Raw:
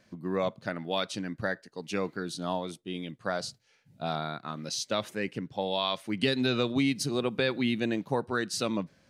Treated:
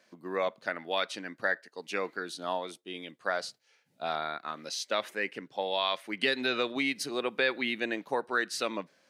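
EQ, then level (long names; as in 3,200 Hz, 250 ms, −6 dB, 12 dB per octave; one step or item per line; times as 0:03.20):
high-pass filter 390 Hz 12 dB per octave
dynamic equaliser 1,900 Hz, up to +6 dB, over −48 dBFS, Q 1.6
dynamic equaliser 7,000 Hz, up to −4 dB, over −48 dBFS, Q 0.84
0.0 dB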